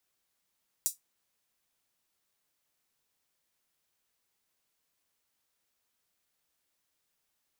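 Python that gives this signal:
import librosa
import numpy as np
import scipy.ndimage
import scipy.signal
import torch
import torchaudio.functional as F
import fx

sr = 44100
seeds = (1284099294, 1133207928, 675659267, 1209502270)

y = fx.drum_hat(sr, length_s=0.24, from_hz=7000.0, decay_s=0.15)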